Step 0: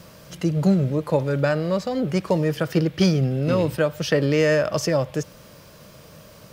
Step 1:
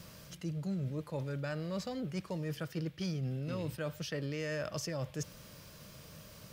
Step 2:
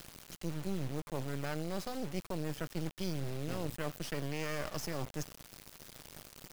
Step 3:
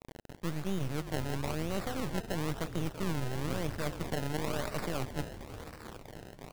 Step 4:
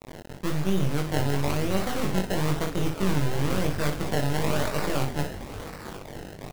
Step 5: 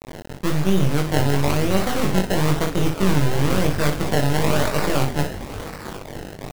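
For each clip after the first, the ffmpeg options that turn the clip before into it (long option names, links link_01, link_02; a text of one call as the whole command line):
ffmpeg -i in.wav -af "equalizer=frequency=590:width_type=o:width=2.7:gain=-6.5,areverse,acompressor=threshold=-31dB:ratio=5,areverse,volume=-4dB" out.wav
ffmpeg -i in.wav -af "acrusher=bits=5:dc=4:mix=0:aa=0.000001,volume=2.5dB" out.wav
ffmpeg -i in.wav -filter_complex "[0:a]asplit=9[link_01][link_02][link_03][link_04][link_05][link_06][link_07][link_08][link_09];[link_02]adelay=333,afreqshift=-38,volume=-12dB[link_10];[link_03]adelay=666,afreqshift=-76,volume=-15.7dB[link_11];[link_04]adelay=999,afreqshift=-114,volume=-19.5dB[link_12];[link_05]adelay=1332,afreqshift=-152,volume=-23.2dB[link_13];[link_06]adelay=1665,afreqshift=-190,volume=-27dB[link_14];[link_07]adelay=1998,afreqshift=-228,volume=-30.7dB[link_15];[link_08]adelay=2331,afreqshift=-266,volume=-34.5dB[link_16];[link_09]adelay=2664,afreqshift=-304,volume=-38.2dB[link_17];[link_01][link_10][link_11][link_12][link_13][link_14][link_15][link_16][link_17]amix=inputs=9:normalize=0,acrusher=samples=26:mix=1:aa=0.000001:lfo=1:lforange=26:lforate=1,volume=3dB" out.wav
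ffmpeg -i in.wav -af "aecho=1:1:21|59:0.668|0.473,volume=6dB" out.wav
ffmpeg -i in.wav -af "aeval=exprs='sgn(val(0))*max(abs(val(0))-0.002,0)':channel_layout=same,volume=6.5dB" out.wav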